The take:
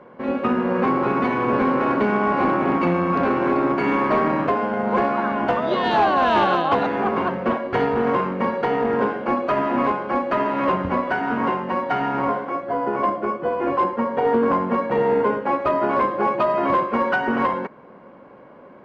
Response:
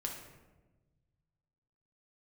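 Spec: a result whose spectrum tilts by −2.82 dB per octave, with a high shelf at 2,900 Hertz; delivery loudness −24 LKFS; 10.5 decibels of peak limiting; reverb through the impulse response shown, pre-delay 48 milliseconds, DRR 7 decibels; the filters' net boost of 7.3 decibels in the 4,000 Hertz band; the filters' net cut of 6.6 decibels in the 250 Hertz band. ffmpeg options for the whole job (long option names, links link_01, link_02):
-filter_complex "[0:a]equalizer=frequency=250:width_type=o:gain=-8.5,highshelf=frequency=2900:gain=5.5,equalizer=frequency=4000:width_type=o:gain=6,alimiter=limit=-19.5dB:level=0:latency=1,asplit=2[link_01][link_02];[1:a]atrim=start_sample=2205,adelay=48[link_03];[link_02][link_03]afir=irnorm=-1:irlink=0,volume=-7.5dB[link_04];[link_01][link_04]amix=inputs=2:normalize=0,volume=2.5dB"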